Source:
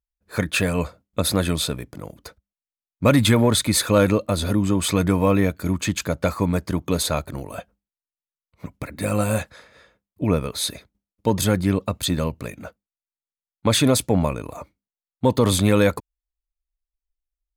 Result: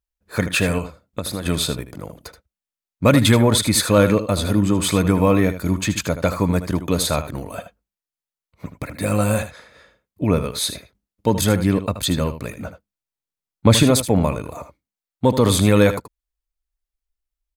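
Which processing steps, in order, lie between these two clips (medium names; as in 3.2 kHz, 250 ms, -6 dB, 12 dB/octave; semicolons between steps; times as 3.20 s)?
0.78–1.46 s: compression 12:1, threshold -25 dBFS, peak gain reduction 11 dB; 12.59–13.83 s: bass shelf 330 Hz +7.5 dB; delay 78 ms -11.5 dB; trim +2 dB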